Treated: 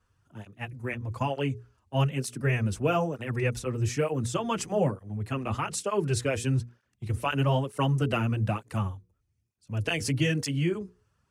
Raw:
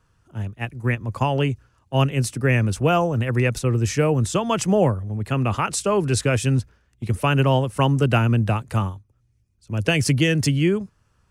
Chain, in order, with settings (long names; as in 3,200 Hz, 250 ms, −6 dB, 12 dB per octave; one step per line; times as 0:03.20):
mains-hum notches 60/120/180/240/300/360/420/480 Hz
through-zero flanger with one copy inverted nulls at 1.1 Hz, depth 7.7 ms
level −4.5 dB